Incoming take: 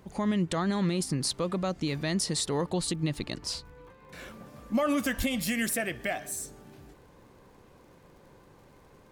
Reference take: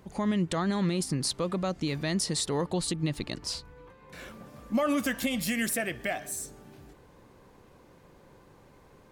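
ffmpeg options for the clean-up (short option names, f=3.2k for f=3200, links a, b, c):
-filter_complex "[0:a]adeclick=t=4,asplit=3[a][b][c];[a]afade=t=out:st=5.17:d=0.02[d];[b]highpass=f=140:w=0.5412,highpass=f=140:w=1.3066,afade=t=in:st=5.17:d=0.02,afade=t=out:st=5.29:d=0.02[e];[c]afade=t=in:st=5.29:d=0.02[f];[d][e][f]amix=inputs=3:normalize=0"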